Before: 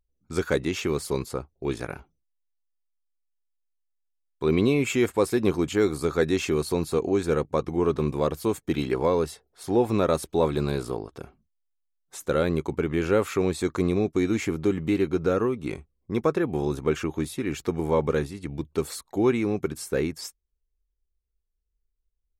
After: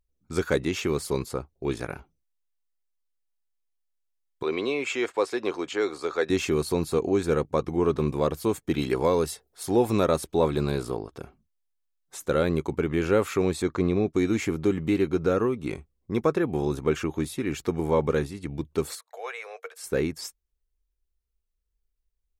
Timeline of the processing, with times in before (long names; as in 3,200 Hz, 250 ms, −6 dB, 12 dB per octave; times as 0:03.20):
0:04.43–0:06.30: three-way crossover with the lows and the highs turned down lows −22 dB, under 360 Hz, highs −21 dB, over 7,200 Hz
0:08.82–0:10.06: high-shelf EQ 5,000 Hz +8.5 dB
0:13.62–0:14.14: high-frequency loss of the air 98 metres
0:18.95–0:19.84: Chebyshev high-pass with heavy ripple 450 Hz, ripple 6 dB